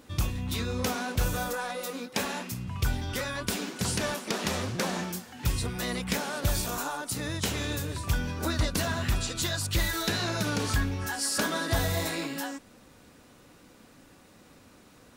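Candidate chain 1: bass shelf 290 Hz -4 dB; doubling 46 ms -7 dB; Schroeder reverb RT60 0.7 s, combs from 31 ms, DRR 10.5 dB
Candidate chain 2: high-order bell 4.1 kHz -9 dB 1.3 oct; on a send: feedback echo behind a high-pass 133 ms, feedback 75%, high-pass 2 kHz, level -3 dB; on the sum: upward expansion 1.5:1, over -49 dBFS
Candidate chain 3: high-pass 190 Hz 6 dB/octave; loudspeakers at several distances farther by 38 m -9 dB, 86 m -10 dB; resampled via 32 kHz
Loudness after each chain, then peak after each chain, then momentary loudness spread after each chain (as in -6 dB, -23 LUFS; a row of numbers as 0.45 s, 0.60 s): -30.5 LUFS, -33.5 LUFS, -31.0 LUFS; -16.0 dBFS, -16.5 dBFS, -15.5 dBFS; 6 LU, 8 LU, 7 LU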